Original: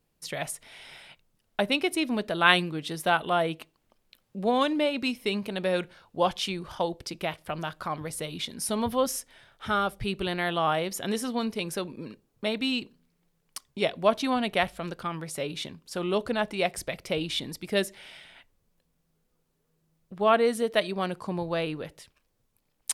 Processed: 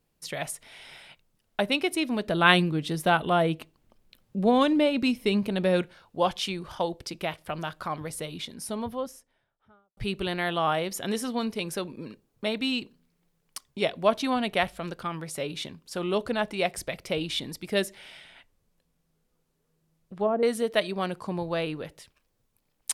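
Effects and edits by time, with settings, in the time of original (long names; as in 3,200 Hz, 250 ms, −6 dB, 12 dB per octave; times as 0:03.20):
0:02.27–0:05.82: low-shelf EQ 330 Hz +9 dB
0:07.96–0:09.97: fade out and dull
0:18.15–0:20.43: treble cut that deepens with the level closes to 550 Hz, closed at −19 dBFS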